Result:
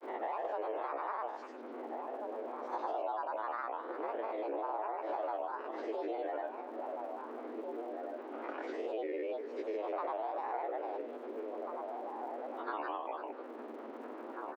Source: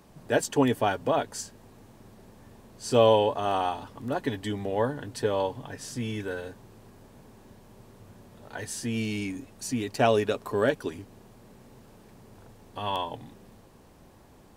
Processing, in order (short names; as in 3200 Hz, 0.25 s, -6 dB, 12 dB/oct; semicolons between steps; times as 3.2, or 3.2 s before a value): time blur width 0.211 s; dynamic EQ 460 Hz, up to +7 dB, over -42 dBFS, Q 1.2; compressor 4:1, threshold -36 dBFS, peak gain reduction 19.5 dB; grains, pitch spread up and down by 7 st; frequency shift +220 Hz; BPF 240–2100 Hz; air absorption 78 m; outdoor echo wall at 290 m, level -8 dB; crackle 130/s -68 dBFS; three-band squash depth 70%; gain +1.5 dB